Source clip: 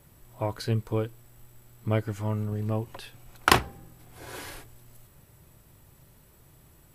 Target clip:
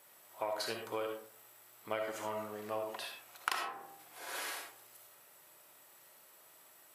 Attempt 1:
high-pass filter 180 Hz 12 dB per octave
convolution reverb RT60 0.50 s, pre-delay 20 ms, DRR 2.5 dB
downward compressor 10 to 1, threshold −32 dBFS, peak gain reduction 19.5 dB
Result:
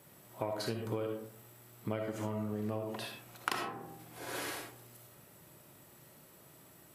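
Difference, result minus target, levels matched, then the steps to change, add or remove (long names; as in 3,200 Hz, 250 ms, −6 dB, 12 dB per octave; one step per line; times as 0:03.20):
250 Hz band +9.5 dB
change: high-pass filter 670 Hz 12 dB per octave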